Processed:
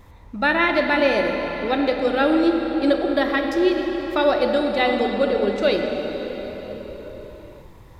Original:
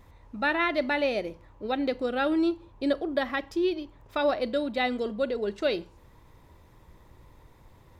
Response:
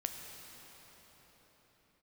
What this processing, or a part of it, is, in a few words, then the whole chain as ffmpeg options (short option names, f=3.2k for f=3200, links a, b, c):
cathedral: -filter_complex "[1:a]atrim=start_sample=2205[a];[0:a][a]afir=irnorm=-1:irlink=0,volume=7.5dB"